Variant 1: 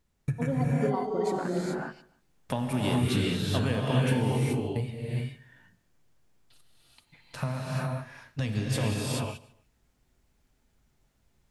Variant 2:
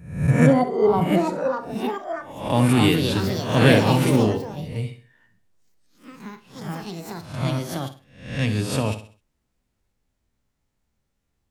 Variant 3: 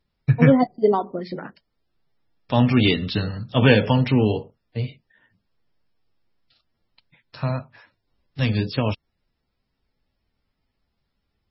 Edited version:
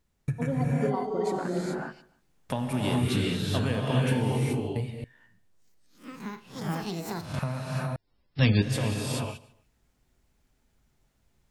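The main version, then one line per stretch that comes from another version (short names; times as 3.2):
1
5.04–7.39 from 2
7.96–8.62 from 3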